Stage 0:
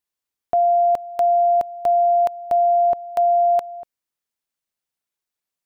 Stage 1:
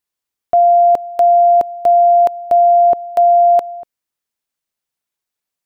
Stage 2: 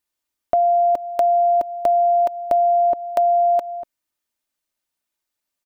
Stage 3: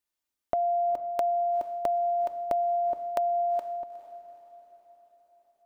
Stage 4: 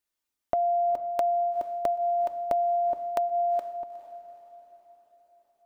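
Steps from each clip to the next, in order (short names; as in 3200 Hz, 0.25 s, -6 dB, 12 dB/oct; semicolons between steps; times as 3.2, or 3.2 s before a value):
dynamic EQ 370 Hz, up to +8 dB, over -35 dBFS, Q 0.79; gain +3 dB
comb 3.3 ms, depth 42%; compressor 3:1, threshold -17 dBFS, peak gain reduction 6.5 dB
compressor, threshold -19 dBFS, peak gain reduction 5.5 dB; diffused feedback echo 0.45 s, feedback 51%, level -15 dB; gain -5.5 dB
flange 0.57 Hz, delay 0.4 ms, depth 1.2 ms, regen -83%; gain +5.5 dB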